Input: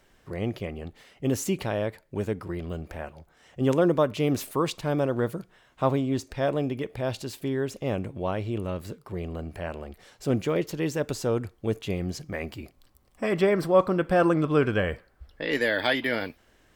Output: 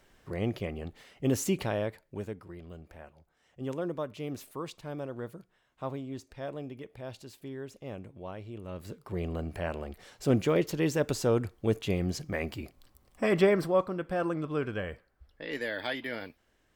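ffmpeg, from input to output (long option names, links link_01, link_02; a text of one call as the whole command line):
ffmpeg -i in.wav -af "volume=11dB,afade=type=out:start_time=1.59:duration=0.84:silence=0.281838,afade=type=in:start_time=8.62:duration=0.61:silence=0.237137,afade=type=out:start_time=13.39:duration=0.49:silence=0.334965" out.wav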